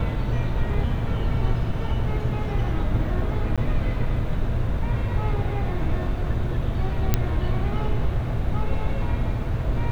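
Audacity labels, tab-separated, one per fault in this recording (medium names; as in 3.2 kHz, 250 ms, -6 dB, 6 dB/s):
3.560000	3.580000	dropout 16 ms
7.140000	7.140000	pop -5 dBFS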